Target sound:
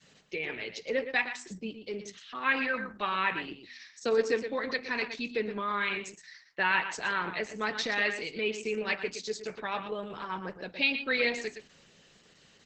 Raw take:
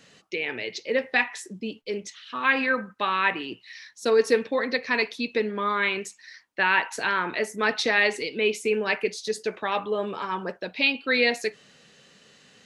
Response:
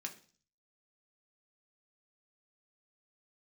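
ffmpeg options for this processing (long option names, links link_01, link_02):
-filter_complex "[0:a]equalizer=frequency=160:width_type=o:width=0.26:gain=7.5,asplit=2[link_01][link_02];[link_02]adelay=116.6,volume=-9dB,highshelf=frequency=4000:gain=-2.62[link_03];[link_01][link_03]amix=inputs=2:normalize=0,adynamicequalizer=threshold=0.0178:dfrequency=480:dqfactor=0.81:tfrequency=480:tqfactor=0.81:attack=5:release=100:ratio=0.375:range=2.5:mode=cutabove:tftype=bell,bandreject=frequency=82.54:width_type=h:width=4,bandreject=frequency=165.08:width_type=h:width=4,bandreject=frequency=247.62:width_type=h:width=4,volume=-5dB" -ar 48000 -c:a libopus -b:a 10k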